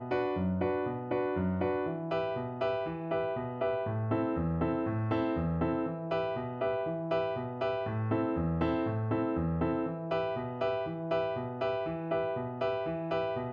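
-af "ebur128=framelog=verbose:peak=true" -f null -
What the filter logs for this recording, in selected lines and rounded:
Integrated loudness:
  I:         -32.7 LUFS
  Threshold: -42.7 LUFS
Loudness range:
  LRA:         1.2 LU
  Threshold: -52.6 LUFS
  LRA low:   -33.3 LUFS
  LRA high:  -32.1 LUFS
True peak:
  Peak:      -17.7 dBFS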